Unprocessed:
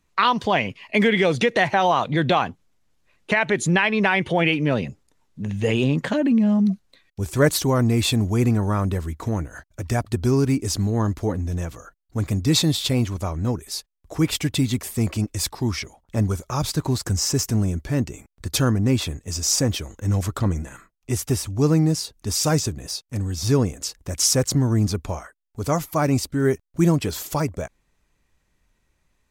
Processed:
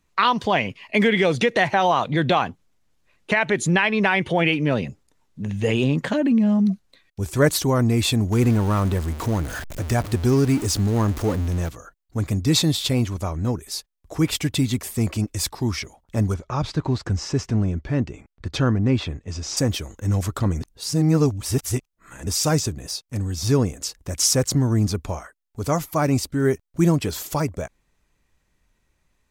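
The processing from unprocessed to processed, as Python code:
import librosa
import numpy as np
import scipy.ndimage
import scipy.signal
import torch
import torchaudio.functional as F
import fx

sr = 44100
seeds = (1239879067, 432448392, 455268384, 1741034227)

y = fx.zero_step(x, sr, step_db=-28.0, at=(8.32, 11.69))
y = fx.lowpass(y, sr, hz=3500.0, slope=12, at=(16.34, 19.57))
y = fx.edit(y, sr, fx.reverse_span(start_s=20.61, length_s=1.66), tone=tone)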